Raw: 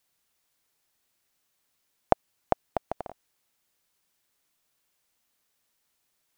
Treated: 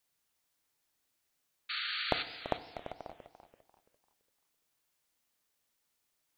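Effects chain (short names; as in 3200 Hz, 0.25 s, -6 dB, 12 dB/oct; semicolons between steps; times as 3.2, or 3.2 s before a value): compressor, threshold -22 dBFS, peak gain reduction 8.5 dB; 1.69–2.23 painted sound noise 1200–4600 Hz -32 dBFS; 2.65–3.06 tube stage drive 25 dB, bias 0.5; FDN reverb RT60 1.1 s, low-frequency decay 0.85×, high-frequency decay 1×, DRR 11.5 dB; warbling echo 0.34 s, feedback 31%, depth 159 cents, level -12 dB; gain -5 dB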